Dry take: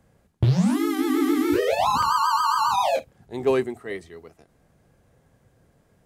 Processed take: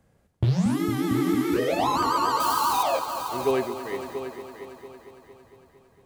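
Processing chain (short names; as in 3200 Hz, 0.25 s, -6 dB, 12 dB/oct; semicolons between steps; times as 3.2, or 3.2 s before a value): 2.4–2.83 switching spikes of -19.5 dBFS; multi-head echo 0.228 s, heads all three, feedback 46%, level -13 dB; gain -3 dB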